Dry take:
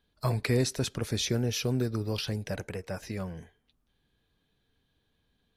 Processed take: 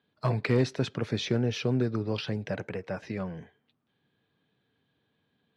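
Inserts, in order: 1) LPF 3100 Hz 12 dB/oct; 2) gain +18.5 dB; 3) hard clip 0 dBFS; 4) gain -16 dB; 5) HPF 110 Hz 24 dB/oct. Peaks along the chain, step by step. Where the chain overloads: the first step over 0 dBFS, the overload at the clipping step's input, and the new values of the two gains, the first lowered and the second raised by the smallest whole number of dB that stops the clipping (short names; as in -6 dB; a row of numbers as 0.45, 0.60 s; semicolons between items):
-15.0, +3.5, 0.0, -16.0, -13.0 dBFS; step 2, 3.5 dB; step 2 +14.5 dB, step 4 -12 dB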